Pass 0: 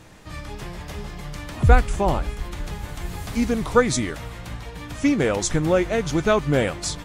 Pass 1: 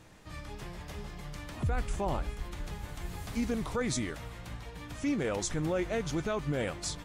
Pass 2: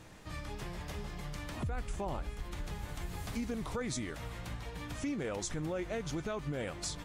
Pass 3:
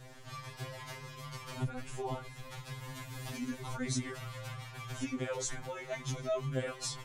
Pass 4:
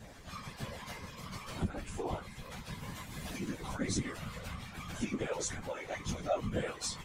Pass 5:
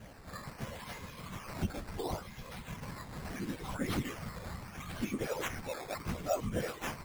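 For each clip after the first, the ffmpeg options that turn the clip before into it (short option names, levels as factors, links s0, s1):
-af "alimiter=limit=0.188:level=0:latency=1:release=13,volume=0.376"
-af "acompressor=threshold=0.0112:ratio=2.5,volume=1.26"
-af "afftfilt=real='re*2.45*eq(mod(b,6),0)':imag='im*2.45*eq(mod(b,6),0)':win_size=2048:overlap=0.75,volume=1.5"
-af "afftfilt=real='hypot(re,im)*cos(2*PI*random(0))':imag='hypot(re,im)*sin(2*PI*random(1))':win_size=512:overlap=0.75,volume=2.11"
-af "acrusher=samples=10:mix=1:aa=0.000001:lfo=1:lforange=10:lforate=0.73"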